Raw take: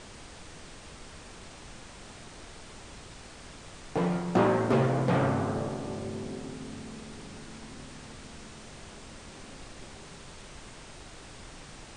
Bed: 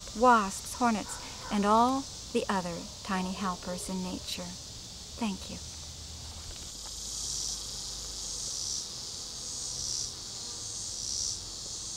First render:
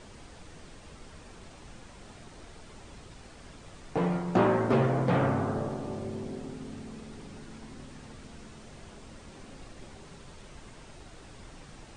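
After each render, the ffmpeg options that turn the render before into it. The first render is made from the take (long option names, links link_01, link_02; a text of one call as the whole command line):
ffmpeg -i in.wav -af "afftdn=noise_reduction=6:noise_floor=-48" out.wav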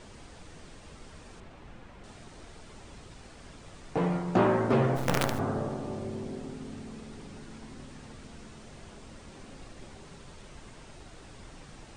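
ffmpeg -i in.wav -filter_complex "[0:a]asettb=1/sr,asplit=3[link_01][link_02][link_03];[link_01]atrim=end=1.404[link_04];[link_02]atrim=start=1.4:end=2.04,asetpts=PTS-STARTPTS,afade=type=in:duration=0.004:curve=qsin,afade=type=out:start_time=0.636:duration=0.004:curve=qsin,bass=frequency=250:gain=0,treble=frequency=4000:gain=-13[link_05];[link_03]atrim=start=2.036[link_06];[link_04][link_05]acrossfade=duration=0.004:curve1=hsin:curve2=qsin[link_07];[link_07][link_06]acrossfade=duration=0.004:curve1=qsin:curve2=hsin,asplit=3[link_08][link_09][link_10];[link_08]afade=type=out:start_time=4.95:duration=0.02[link_11];[link_09]acrusher=bits=4:dc=4:mix=0:aa=0.000001,afade=type=in:start_time=4.95:duration=0.02,afade=type=out:start_time=5.38:duration=0.02[link_12];[link_10]afade=type=in:start_time=5.38:duration=0.02[link_13];[link_11][link_12][link_13]amix=inputs=3:normalize=0" out.wav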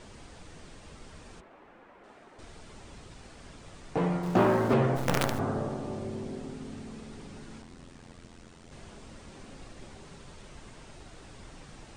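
ffmpeg -i in.wav -filter_complex "[0:a]asettb=1/sr,asplit=3[link_01][link_02][link_03];[link_01]atrim=end=1.414[link_04];[link_02]atrim=start=1.41:end=2.39,asetpts=PTS-STARTPTS,afade=type=in:duration=0.004:curve=qsin,afade=type=out:start_time=0.976:duration=0.004:curve=qsin,acrossover=split=260 2400:gain=0.1 1 0.2[link_05][link_06][link_07];[link_05][link_06][link_07]amix=inputs=3:normalize=0[link_08];[link_03]atrim=start=2.386[link_09];[link_04][link_08]acrossfade=duration=0.004:curve1=hsin:curve2=qsin[link_10];[link_10][link_09]acrossfade=duration=0.004:curve1=qsin:curve2=hsin,asettb=1/sr,asplit=3[link_11][link_12][link_13];[link_11]atrim=end=4.234[link_14];[link_12]atrim=start=4.23:end=4.74,asetpts=PTS-STARTPTS,afade=type=in:duration=0.004:curve=qsin,afade=type=out:start_time=0.506:duration=0.004:curve=qsin,aeval=exprs='val(0)+0.5*0.0126*sgn(val(0))':channel_layout=same[link_15];[link_13]atrim=start=4.736[link_16];[link_14][link_15]acrossfade=duration=0.004:curve1=hsin:curve2=qsin[link_17];[link_17][link_16]acrossfade=duration=0.004:curve1=qsin:curve2=hsin,asettb=1/sr,asplit=3[link_18][link_19][link_20];[link_18]atrim=end=7.624[link_21];[link_19]atrim=start=7.62:end=8.72,asetpts=PTS-STARTPTS,afade=type=in:duration=0.004:curve=qsin,afade=type=out:start_time=1.096:duration=0.004:curve=qsin,tremolo=f=86:d=0.857[link_22];[link_20]atrim=start=8.716[link_23];[link_21][link_22]acrossfade=duration=0.004:curve1=hsin:curve2=qsin[link_24];[link_24][link_23]acrossfade=duration=0.004:curve1=qsin:curve2=hsin" out.wav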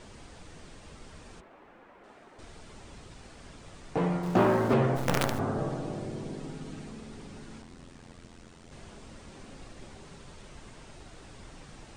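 ffmpeg -i in.wav -filter_complex "[0:a]asettb=1/sr,asplit=3[link_01][link_02][link_03];[link_01]atrim=end=5.584[link_04];[link_02]atrim=start=5.58:end=6.91,asetpts=PTS-STARTPTS,afade=type=in:duration=0.004:curve=qsin,afade=type=out:start_time=1.326:duration=0.004:curve=qsin,aecho=1:1:6.3:0.65,atrim=end_sample=58653[link_05];[link_03]atrim=start=6.906[link_06];[link_04][link_05]acrossfade=duration=0.004:curve1=hsin:curve2=qsin[link_07];[link_07][link_06]acrossfade=duration=0.004:curve1=qsin:curve2=hsin" out.wav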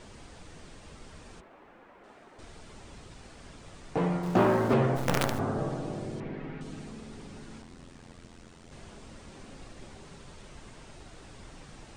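ffmpeg -i in.wav -filter_complex "[0:a]asettb=1/sr,asplit=3[link_01][link_02][link_03];[link_01]atrim=end=6.204[link_04];[link_02]atrim=start=6.2:end=6.61,asetpts=PTS-STARTPTS,afade=type=in:duration=0.004:curve=qsin,afade=type=out:start_time=0.406:duration=0.004:curve=qsin,lowpass=frequency=2100:width_type=q:width=2.4[link_05];[link_03]atrim=start=6.606[link_06];[link_04][link_05]acrossfade=duration=0.004:curve1=hsin:curve2=qsin[link_07];[link_07][link_06]acrossfade=duration=0.004:curve1=qsin:curve2=hsin" out.wav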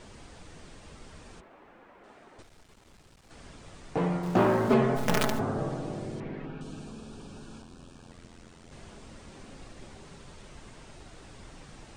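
ffmpeg -i in.wav -filter_complex "[0:a]asettb=1/sr,asplit=3[link_01][link_02][link_03];[link_01]atrim=end=2.424[link_04];[link_02]atrim=start=2.42:end=3.31,asetpts=PTS-STARTPTS,afade=type=in:duration=0.004:curve=qsin,afade=type=out:start_time=0.886:duration=0.004:curve=qsin,aeval=exprs='(tanh(562*val(0)+0.8)-tanh(0.8))/562':channel_layout=same[link_05];[link_03]atrim=start=3.306[link_06];[link_04][link_05]acrossfade=duration=0.004:curve1=hsin:curve2=qsin[link_07];[link_07][link_06]acrossfade=duration=0.004:curve1=qsin:curve2=hsin,asettb=1/sr,asplit=3[link_08][link_09][link_10];[link_08]atrim=end=4.674[link_11];[link_09]atrim=start=4.67:end=5.41,asetpts=PTS-STARTPTS,afade=type=in:duration=0.004:curve=qsin,afade=type=out:start_time=0.736:duration=0.004:curve=qsin,aecho=1:1:4.7:0.65,atrim=end_sample=32634[link_12];[link_10]atrim=start=5.406[link_13];[link_11][link_12]acrossfade=duration=0.004:curve1=hsin:curve2=qsin[link_14];[link_14][link_13]acrossfade=duration=0.004:curve1=qsin:curve2=hsin,asettb=1/sr,asplit=3[link_15][link_16][link_17];[link_15]atrim=end=6.454[link_18];[link_16]atrim=start=6.45:end=8.11,asetpts=PTS-STARTPTS,afade=type=in:duration=0.004:curve=qsin,afade=type=out:start_time=1.656:duration=0.004:curve=qsin,asuperstop=centerf=2000:order=4:qfactor=3.5[link_19];[link_17]atrim=start=8.106[link_20];[link_18][link_19]acrossfade=duration=0.004:curve1=hsin:curve2=qsin[link_21];[link_21][link_20]acrossfade=duration=0.004:curve1=qsin:curve2=hsin" out.wav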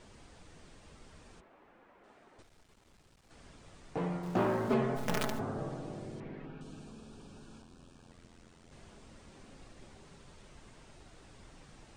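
ffmpeg -i in.wav -af "volume=-7dB" out.wav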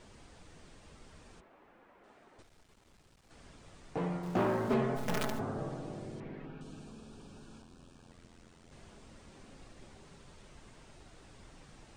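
ffmpeg -i in.wav -af "asoftclip=type=hard:threshold=-22.5dB" out.wav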